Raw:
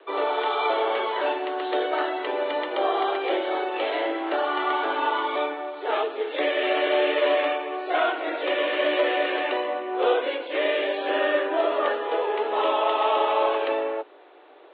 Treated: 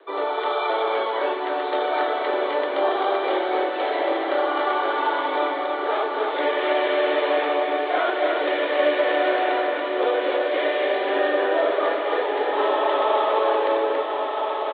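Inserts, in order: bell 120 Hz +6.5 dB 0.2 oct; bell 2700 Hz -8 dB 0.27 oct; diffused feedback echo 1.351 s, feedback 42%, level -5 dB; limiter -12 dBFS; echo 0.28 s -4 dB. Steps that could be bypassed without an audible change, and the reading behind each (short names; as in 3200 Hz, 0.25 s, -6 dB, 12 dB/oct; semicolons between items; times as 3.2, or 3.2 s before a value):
bell 120 Hz: input band starts at 270 Hz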